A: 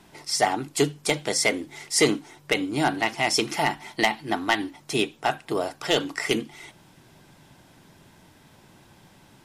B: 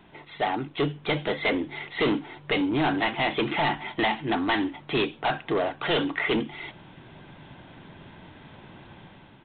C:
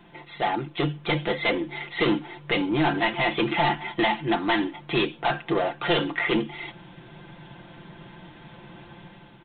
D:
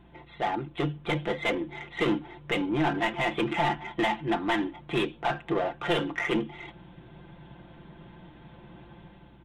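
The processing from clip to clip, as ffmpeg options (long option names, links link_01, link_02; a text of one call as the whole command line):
ffmpeg -i in.wav -af "dynaudnorm=framelen=600:gausssize=3:maxgain=7dB,aresample=8000,asoftclip=type=tanh:threshold=-20dB,aresample=44100" out.wav
ffmpeg -i in.wav -af "aecho=1:1:5.8:0.65" out.wav
ffmpeg -i in.wav -filter_complex "[0:a]asplit=2[link_01][link_02];[link_02]adynamicsmooth=sensitivity=2.5:basefreq=1300,volume=-2.5dB[link_03];[link_01][link_03]amix=inputs=2:normalize=0,aeval=exprs='val(0)+0.00355*(sin(2*PI*60*n/s)+sin(2*PI*2*60*n/s)/2+sin(2*PI*3*60*n/s)/3+sin(2*PI*4*60*n/s)/4+sin(2*PI*5*60*n/s)/5)':channel_layout=same,volume=-8dB" out.wav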